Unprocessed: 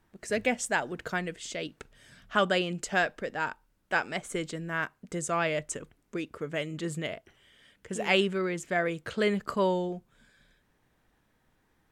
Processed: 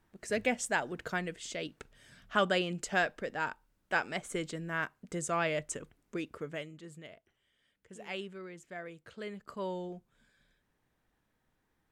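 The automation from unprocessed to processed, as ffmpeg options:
-af "volume=5dB,afade=t=out:st=6.34:d=0.44:silence=0.237137,afade=t=in:st=9.42:d=0.54:silence=0.398107"

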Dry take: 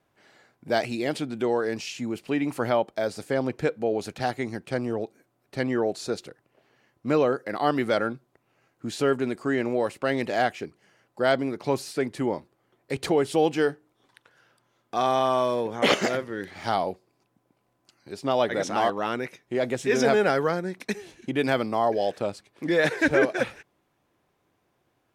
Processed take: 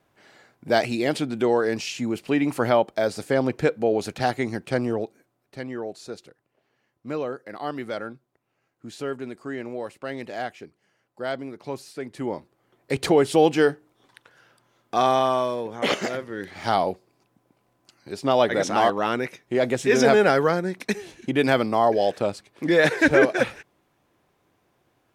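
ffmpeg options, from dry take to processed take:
-af "volume=22dB,afade=t=out:st=4.82:d=0.79:silence=0.281838,afade=t=in:st=12.03:d=0.89:silence=0.266073,afade=t=out:st=14.97:d=0.6:silence=0.446684,afade=t=in:st=16.15:d=0.65:silence=0.473151"

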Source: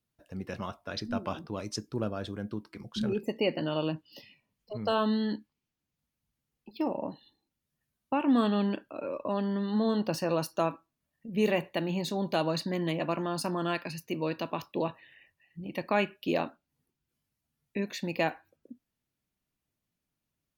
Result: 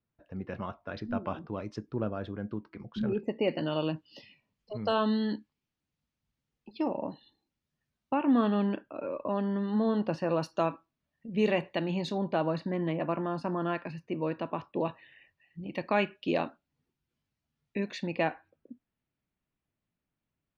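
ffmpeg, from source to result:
-af "asetnsamples=n=441:p=0,asendcmd='3.48 lowpass f 5500;8.14 lowpass f 2500;10.43 lowpass f 4500;12.18 lowpass f 1900;14.85 lowpass f 4600;18.07 lowpass f 2800',lowpass=2.2k"

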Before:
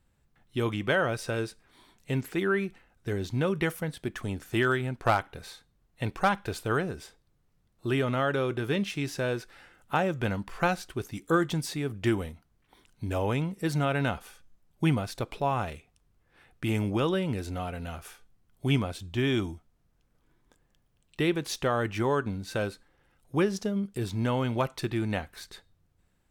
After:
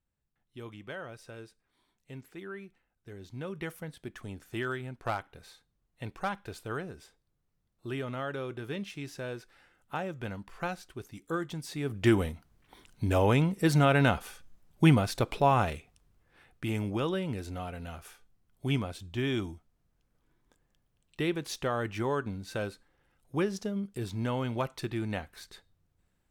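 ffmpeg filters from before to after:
-af "volume=4dB,afade=t=in:st=3.14:d=0.65:silence=0.446684,afade=t=in:st=11.64:d=0.55:silence=0.237137,afade=t=out:st=15.62:d=1.08:silence=0.398107"

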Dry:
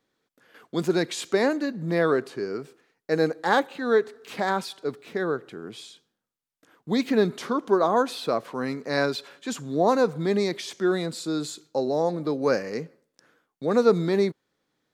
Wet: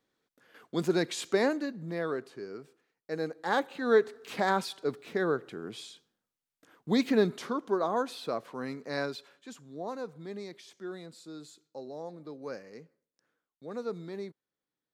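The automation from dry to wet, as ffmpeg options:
-af "volume=5dB,afade=t=out:st=1.41:d=0.53:silence=0.446684,afade=t=in:st=3.34:d=0.64:silence=0.354813,afade=t=out:st=6.96:d=0.71:silence=0.501187,afade=t=out:st=8.89:d=0.71:silence=0.354813"

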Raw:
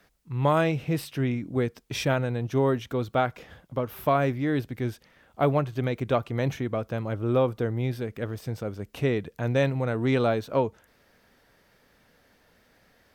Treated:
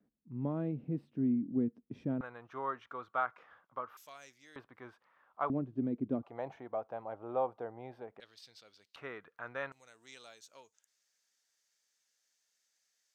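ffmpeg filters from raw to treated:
-af "asetnsamples=n=441:p=0,asendcmd='2.21 bandpass f 1200;3.97 bandpass f 6500;4.56 bandpass f 1100;5.5 bandpass f 260;6.23 bandpass f 790;8.2 bandpass f 4200;8.96 bandpass f 1300;9.72 bandpass f 6800',bandpass=f=240:t=q:w=3.7:csg=0"

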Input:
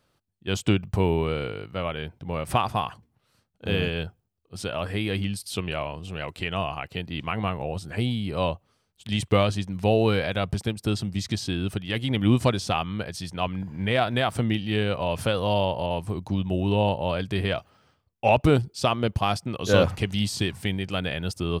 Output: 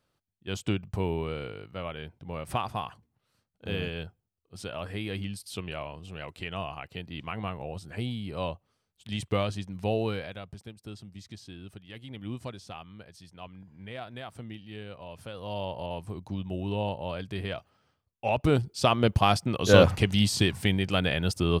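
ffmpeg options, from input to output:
-af "volume=12dB,afade=t=out:st=9.96:d=0.49:silence=0.316228,afade=t=in:st=15.3:d=0.49:silence=0.354813,afade=t=in:st=18.31:d=0.79:silence=0.316228"

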